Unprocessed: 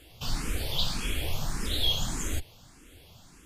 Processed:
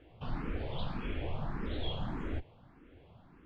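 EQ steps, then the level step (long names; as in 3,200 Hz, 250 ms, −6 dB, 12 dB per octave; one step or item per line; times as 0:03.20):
low-pass filter 1,600 Hz 6 dB per octave
high-frequency loss of the air 480 metres
low-shelf EQ 100 Hz −9 dB
+1.0 dB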